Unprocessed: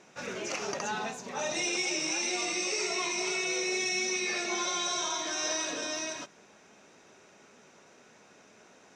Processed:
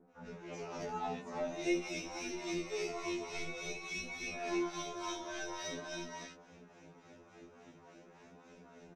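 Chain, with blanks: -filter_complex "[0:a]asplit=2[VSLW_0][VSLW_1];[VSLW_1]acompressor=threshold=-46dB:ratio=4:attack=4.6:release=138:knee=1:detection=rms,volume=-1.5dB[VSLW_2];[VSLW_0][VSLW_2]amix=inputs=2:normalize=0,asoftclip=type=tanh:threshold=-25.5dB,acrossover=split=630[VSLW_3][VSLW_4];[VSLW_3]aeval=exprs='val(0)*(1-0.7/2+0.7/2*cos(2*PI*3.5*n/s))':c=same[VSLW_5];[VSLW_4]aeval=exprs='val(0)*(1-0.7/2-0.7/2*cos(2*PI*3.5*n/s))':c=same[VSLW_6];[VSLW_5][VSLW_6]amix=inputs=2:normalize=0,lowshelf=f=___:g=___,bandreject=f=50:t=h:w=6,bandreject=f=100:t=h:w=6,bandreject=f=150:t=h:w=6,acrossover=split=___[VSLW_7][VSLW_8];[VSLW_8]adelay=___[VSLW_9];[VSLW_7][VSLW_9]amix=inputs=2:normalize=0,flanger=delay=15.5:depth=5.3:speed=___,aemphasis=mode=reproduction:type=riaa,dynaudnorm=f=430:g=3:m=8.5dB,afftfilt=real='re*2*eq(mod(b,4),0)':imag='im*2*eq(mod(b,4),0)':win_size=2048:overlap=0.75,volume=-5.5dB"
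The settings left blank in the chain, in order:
250, -3.5, 1500, 90, 0.47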